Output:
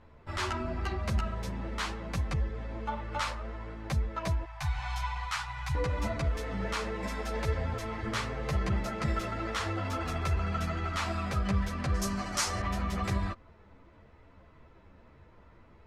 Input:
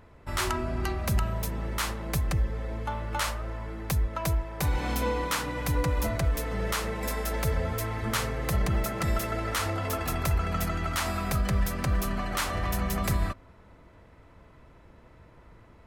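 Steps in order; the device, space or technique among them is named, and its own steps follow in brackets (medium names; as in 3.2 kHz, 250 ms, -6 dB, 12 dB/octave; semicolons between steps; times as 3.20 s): 4.44–5.75 s: elliptic band-stop 130–770 Hz, stop band 50 dB; string-machine ensemble chorus (three-phase chorus; low-pass 5.7 kHz 12 dB/octave); 11.94–12.62 s: high-order bell 7.9 kHz +13.5 dB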